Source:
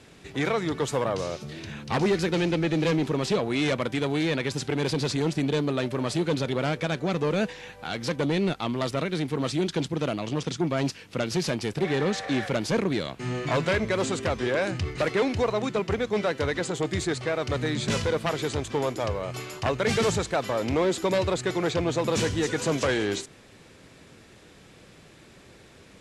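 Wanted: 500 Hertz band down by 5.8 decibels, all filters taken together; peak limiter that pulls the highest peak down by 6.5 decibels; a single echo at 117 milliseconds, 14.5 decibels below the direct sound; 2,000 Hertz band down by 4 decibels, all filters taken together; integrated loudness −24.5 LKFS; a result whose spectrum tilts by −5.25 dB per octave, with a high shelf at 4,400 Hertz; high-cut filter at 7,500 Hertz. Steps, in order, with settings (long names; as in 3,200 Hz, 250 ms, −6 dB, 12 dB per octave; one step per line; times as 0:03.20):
low-pass filter 7,500 Hz
parametric band 500 Hz −7 dB
parametric band 2,000 Hz −3.5 dB
high-shelf EQ 4,400 Hz −5.5 dB
brickwall limiter −23 dBFS
single-tap delay 117 ms −14.5 dB
level +8 dB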